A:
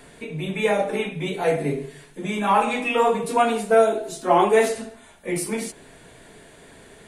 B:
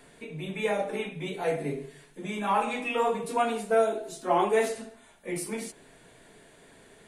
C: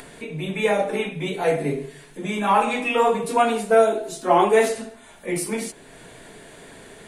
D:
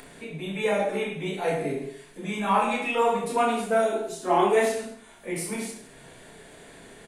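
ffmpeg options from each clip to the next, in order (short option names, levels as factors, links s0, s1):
-af "equalizer=f=63:t=o:w=1.5:g=-5,volume=0.447"
-af "acompressor=mode=upward:threshold=0.00562:ratio=2.5,volume=2.37"
-af "aecho=1:1:30|66|109.2|161|223.2:0.631|0.398|0.251|0.158|0.1,volume=0.501"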